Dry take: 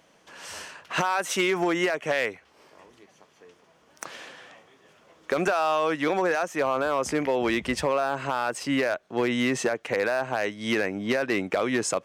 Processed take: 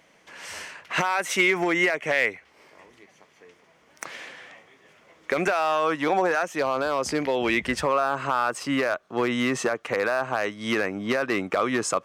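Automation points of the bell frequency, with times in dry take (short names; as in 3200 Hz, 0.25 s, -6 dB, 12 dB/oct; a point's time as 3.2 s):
bell +8.5 dB 0.4 oct
5.62 s 2100 Hz
6.22 s 640 Hz
6.59 s 4600 Hz
7.21 s 4600 Hz
7.86 s 1200 Hz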